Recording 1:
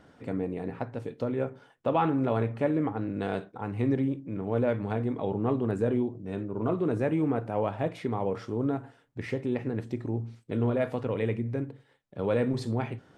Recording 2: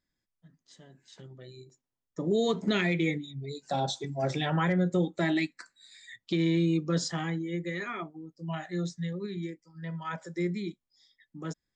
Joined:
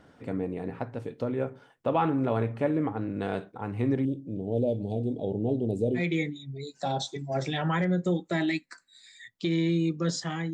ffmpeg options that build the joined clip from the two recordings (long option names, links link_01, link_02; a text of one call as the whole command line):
ffmpeg -i cue0.wav -i cue1.wav -filter_complex "[0:a]asettb=1/sr,asplit=3[link_01][link_02][link_03];[link_01]atrim=end=4.054[link_04];[link_02]atrim=start=4.05:end=6.02,asetpts=PTS-STARTPTS,afade=type=in:duration=0.004:curve=qsin,afade=type=out:start_time=1.966:duration=0.004:curve=qsin,asuperstop=centerf=1500:order=8:qfactor=0.6[link_05];[link_03]atrim=start=6.016[link_06];[link_04][link_05]acrossfade=duration=0.004:curve1=hsin:curve2=qsin[link_07];[link_07][link_06]acrossfade=duration=0.004:curve1=qsin:curve2=hsin,apad=whole_dur=10.53,atrim=end=10.53,atrim=end=6.02,asetpts=PTS-STARTPTS[link_08];[1:a]atrim=start=2.82:end=7.41,asetpts=PTS-STARTPTS[link_09];[link_08][link_09]acrossfade=duration=0.08:curve1=tri:curve2=tri" out.wav